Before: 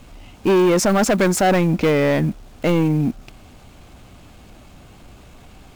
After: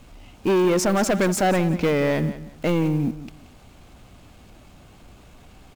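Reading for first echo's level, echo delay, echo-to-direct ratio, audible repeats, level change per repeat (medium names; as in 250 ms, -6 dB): -14.5 dB, 178 ms, -14.5 dB, 2, -13.0 dB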